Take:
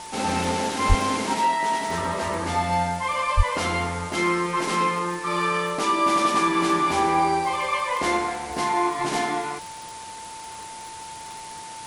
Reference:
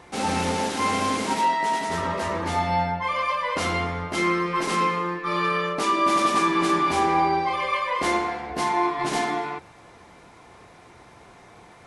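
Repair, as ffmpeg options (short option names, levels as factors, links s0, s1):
-filter_complex "[0:a]adeclick=t=4,bandreject=f=890:w=30,asplit=3[s0][s1][s2];[s0]afade=t=out:st=0.88:d=0.02[s3];[s1]highpass=f=140:w=0.5412,highpass=f=140:w=1.3066,afade=t=in:st=0.88:d=0.02,afade=t=out:st=1:d=0.02[s4];[s2]afade=t=in:st=1:d=0.02[s5];[s3][s4][s5]amix=inputs=3:normalize=0,asplit=3[s6][s7][s8];[s6]afade=t=out:st=3.36:d=0.02[s9];[s7]highpass=f=140:w=0.5412,highpass=f=140:w=1.3066,afade=t=in:st=3.36:d=0.02,afade=t=out:st=3.48:d=0.02[s10];[s8]afade=t=in:st=3.48:d=0.02[s11];[s9][s10][s11]amix=inputs=3:normalize=0,afftdn=nr=11:nf=-38"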